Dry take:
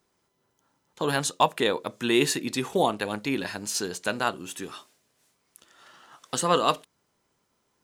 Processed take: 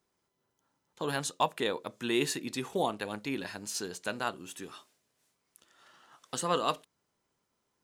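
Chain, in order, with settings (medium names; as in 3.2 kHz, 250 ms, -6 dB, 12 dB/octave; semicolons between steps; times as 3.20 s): trim -7 dB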